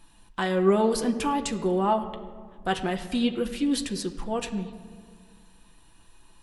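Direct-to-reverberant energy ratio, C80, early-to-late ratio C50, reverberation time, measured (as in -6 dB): 4.0 dB, 12.5 dB, 11.5 dB, 1.8 s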